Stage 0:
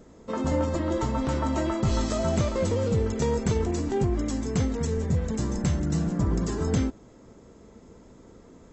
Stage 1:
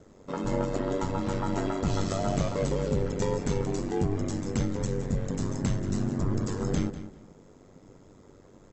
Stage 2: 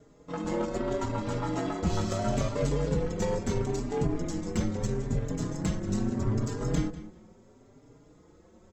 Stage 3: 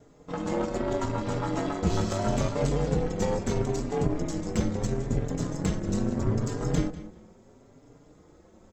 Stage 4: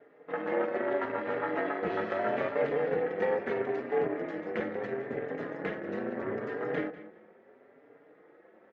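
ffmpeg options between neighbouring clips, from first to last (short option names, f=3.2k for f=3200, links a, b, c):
-filter_complex "[0:a]aeval=exprs='val(0)*sin(2*PI*48*n/s)':c=same,asplit=2[a][b];[b]adelay=196,lowpass=f=4.1k:p=1,volume=-12dB,asplit=2[c][d];[d]adelay=196,lowpass=f=4.1k:p=1,volume=0.23,asplit=2[e][f];[f]adelay=196,lowpass=f=4.1k:p=1,volume=0.23[g];[a][c][e][g]amix=inputs=4:normalize=0"
-filter_complex "[0:a]asplit=2[a][b];[b]acrusher=bits=3:mix=0:aa=0.5,volume=-10.5dB[c];[a][c]amix=inputs=2:normalize=0,asplit=2[d][e];[e]adelay=4.5,afreqshift=0.76[f];[d][f]amix=inputs=2:normalize=1"
-af "tremolo=f=280:d=0.621,volume=4.5dB"
-af "highpass=430,equalizer=f=450:t=q:w=4:g=4,equalizer=f=1k:t=q:w=4:g=-6,equalizer=f=1.8k:t=q:w=4:g=9,lowpass=f=2.5k:w=0.5412,lowpass=f=2.5k:w=1.3066,volume=1dB"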